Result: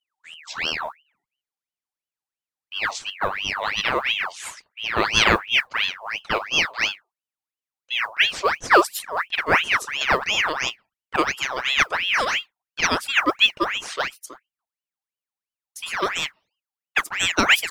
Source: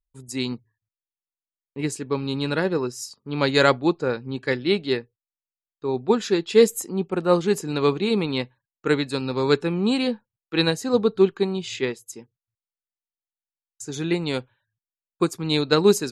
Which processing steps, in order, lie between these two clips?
speed glide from 60% -> 122%; modulation noise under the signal 35 dB; ring modulator with a swept carrier 1900 Hz, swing 60%, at 2.9 Hz; gain +2.5 dB

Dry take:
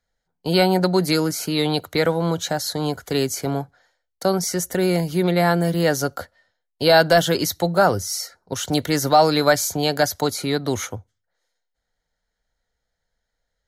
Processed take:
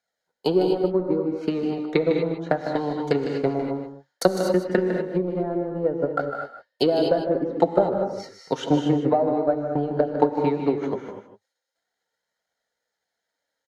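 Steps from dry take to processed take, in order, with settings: treble ducked by the level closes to 420 Hz, closed at -16.5 dBFS; HPF 260 Hz 12 dB/oct; transient shaper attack +9 dB, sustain -6 dB; flange 0.16 Hz, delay 1.3 ms, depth 7.2 ms, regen +58%; on a send: echo 0.154 s -10 dB; on the sum: non-linear reverb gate 0.27 s rising, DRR 4 dB; gain +2 dB

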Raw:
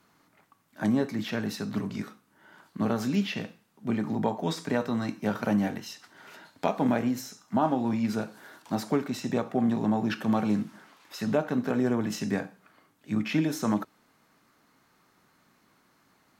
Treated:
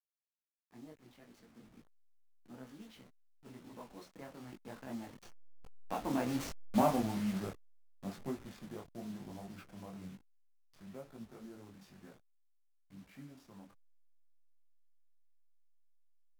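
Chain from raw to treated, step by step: level-crossing sampler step -31.5 dBFS; Doppler pass-by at 6.67, 38 m/s, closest 13 m; detuned doubles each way 37 cents; gain +1 dB

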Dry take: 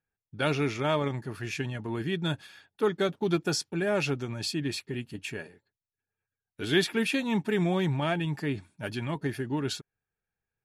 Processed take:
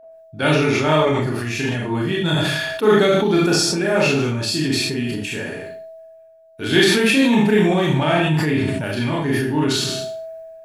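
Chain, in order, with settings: whine 650 Hz -50 dBFS; Schroeder reverb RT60 0.46 s, combs from 26 ms, DRR -3.5 dB; sustainer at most 25 dB/s; gain +5.5 dB

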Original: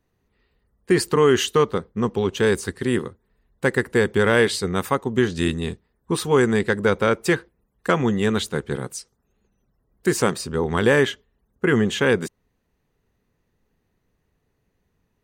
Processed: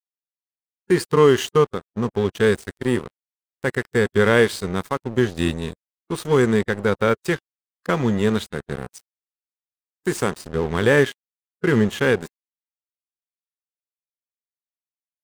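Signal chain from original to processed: crossover distortion -31.5 dBFS; harmonic-percussive split percussive -6 dB; gain +4 dB

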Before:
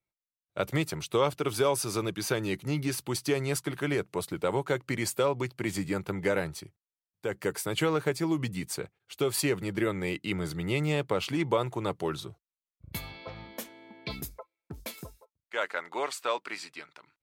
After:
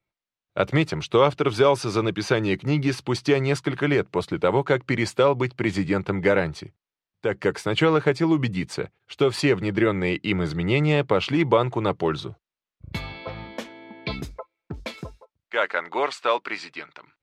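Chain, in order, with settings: LPF 4000 Hz 12 dB/oct; gain +8 dB

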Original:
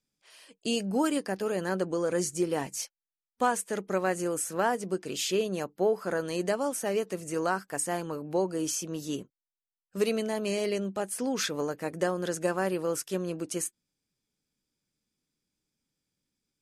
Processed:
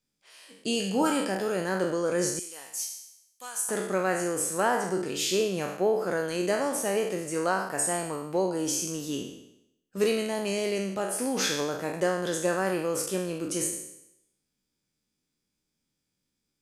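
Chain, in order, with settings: spectral trails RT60 0.80 s; 2.39–3.69 pre-emphasis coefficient 0.97

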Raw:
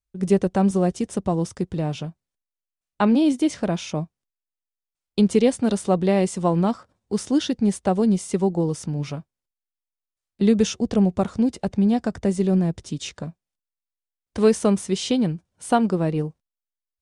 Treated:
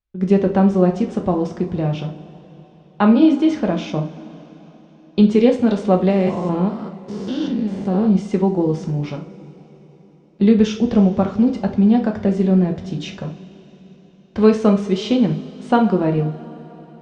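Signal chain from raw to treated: 6.1–8.16 stepped spectrum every 0.2 s; Gaussian blur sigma 1.9 samples; two-slope reverb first 0.36 s, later 4.2 s, from -21 dB, DRR 2.5 dB; gain +3 dB

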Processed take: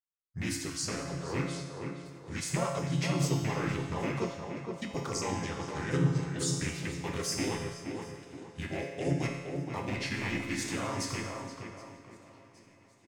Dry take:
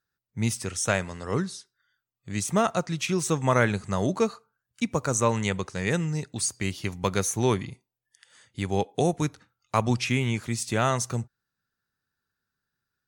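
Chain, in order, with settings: rattling part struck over -24 dBFS, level -19 dBFS; gate with hold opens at -57 dBFS; notches 60/120/180/240/300/360 Hz; dynamic EQ 330 Hz, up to +3 dB, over -40 dBFS, Q 3.5; in parallel at +2.5 dB: vocal rider 2 s; on the sum: limiter -9.5 dBFS, peak gain reduction 11 dB; resonator 170 Hz, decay 1.2 s, mix 90%; feedback echo 0.77 s, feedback 59%, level -22.5 dB; harmoniser -4 st 0 dB, -3 st -1 dB; on a send: tape echo 0.47 s, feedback 44%, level -4 dB, low-pass 1500 Hz; on the sum: gain -1.5 dB

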